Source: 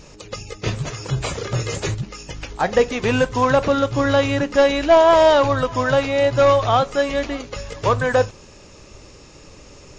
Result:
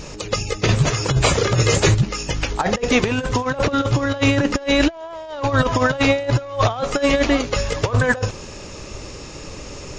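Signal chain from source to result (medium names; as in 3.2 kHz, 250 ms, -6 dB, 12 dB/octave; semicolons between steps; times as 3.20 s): compressor with a negative ratio -22 dBFS, ratio -0.5; trim +4.5 dB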